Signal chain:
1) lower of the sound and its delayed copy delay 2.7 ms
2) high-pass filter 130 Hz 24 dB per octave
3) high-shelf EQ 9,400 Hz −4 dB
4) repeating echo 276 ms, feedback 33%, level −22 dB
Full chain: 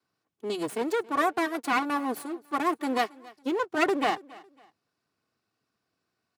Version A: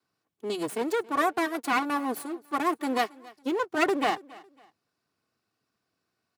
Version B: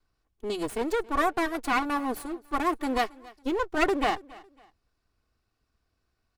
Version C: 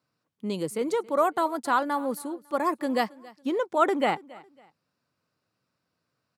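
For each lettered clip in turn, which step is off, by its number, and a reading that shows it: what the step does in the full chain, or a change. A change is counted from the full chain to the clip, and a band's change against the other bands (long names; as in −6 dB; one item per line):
3, 8 kHz band +1.5 dB
2, change in crest factor −3.0 dB
1, 2 kHz band −3.5 dB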